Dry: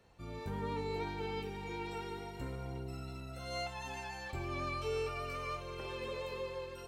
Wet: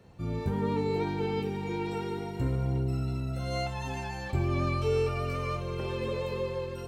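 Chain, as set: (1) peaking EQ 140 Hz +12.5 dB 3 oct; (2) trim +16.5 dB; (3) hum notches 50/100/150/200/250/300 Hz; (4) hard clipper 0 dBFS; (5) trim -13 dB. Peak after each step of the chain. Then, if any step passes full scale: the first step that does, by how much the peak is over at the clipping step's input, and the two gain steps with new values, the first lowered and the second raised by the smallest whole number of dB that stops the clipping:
-20.0 dBFS, -3.5 dBFS, -4.0 dBFS, -4.0 dBFS, -17.0 dBFS; nothing clips

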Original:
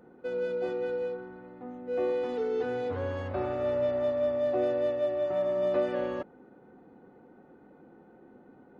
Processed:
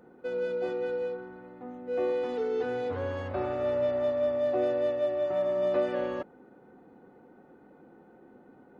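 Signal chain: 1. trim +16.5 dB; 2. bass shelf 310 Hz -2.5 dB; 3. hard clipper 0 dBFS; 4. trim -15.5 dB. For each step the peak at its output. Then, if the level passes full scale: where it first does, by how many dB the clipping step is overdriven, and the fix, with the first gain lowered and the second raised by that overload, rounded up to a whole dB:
-1.0 dBFS, -2.0 dBFS, -2.0 dBFS, -17.5 dBFS; nothing clips

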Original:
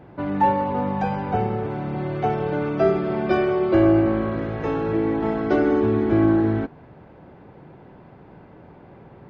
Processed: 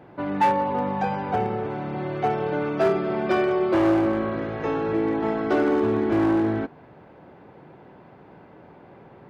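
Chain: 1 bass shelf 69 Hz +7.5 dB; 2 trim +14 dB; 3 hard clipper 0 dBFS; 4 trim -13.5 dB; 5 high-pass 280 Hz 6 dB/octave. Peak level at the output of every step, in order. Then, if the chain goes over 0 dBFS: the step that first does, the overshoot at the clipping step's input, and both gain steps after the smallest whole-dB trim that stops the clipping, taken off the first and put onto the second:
-6.0 dBFS, +8.0 dBFS, 0.0 dBFS, -13.5 dBFS, -10.5 dBFS; step 2, 8.0 dB; step 2 +6 dB, step 4 -5.5 dB

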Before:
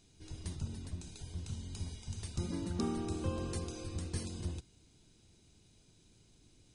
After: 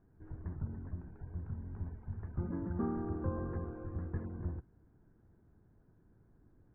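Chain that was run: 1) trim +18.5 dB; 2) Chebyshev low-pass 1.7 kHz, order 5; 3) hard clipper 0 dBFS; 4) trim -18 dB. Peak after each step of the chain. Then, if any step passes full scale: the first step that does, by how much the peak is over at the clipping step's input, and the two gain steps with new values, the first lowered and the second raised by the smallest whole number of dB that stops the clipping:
-3.0 dBFS, -5.0 dBFS, -5.0 dBFS, -23.0 dBFS; nothing clips

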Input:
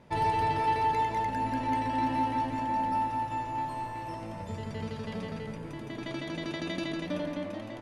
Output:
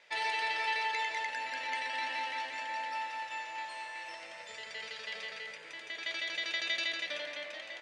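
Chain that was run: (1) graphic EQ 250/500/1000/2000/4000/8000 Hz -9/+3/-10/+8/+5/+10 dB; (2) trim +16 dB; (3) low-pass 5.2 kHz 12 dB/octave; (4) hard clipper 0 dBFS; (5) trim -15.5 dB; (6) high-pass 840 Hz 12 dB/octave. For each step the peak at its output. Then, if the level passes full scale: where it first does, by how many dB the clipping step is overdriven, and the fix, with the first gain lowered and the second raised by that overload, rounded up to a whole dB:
-19.5 dBFS, -3.5 dBFS, -3.5 dBFS, -3.5 dBFS, -19.0 dBFS, -21.0 dBFS; nothing clips

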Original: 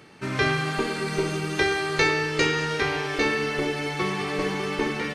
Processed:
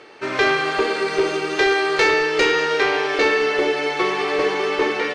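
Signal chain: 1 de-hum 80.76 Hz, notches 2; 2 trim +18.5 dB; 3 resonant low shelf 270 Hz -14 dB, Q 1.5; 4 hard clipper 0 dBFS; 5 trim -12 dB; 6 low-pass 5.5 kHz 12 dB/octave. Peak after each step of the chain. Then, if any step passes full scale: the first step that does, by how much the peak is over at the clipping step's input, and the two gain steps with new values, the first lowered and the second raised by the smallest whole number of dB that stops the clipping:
-9.0 dBFS, +9.5 dBFS, +10.0 dBFS, 0.0 dBFS, -12.0 dBFS, -11.0 dBFS; step 2, 10.0 dB; step 2 +8.5 dB, step 5 -2 dB

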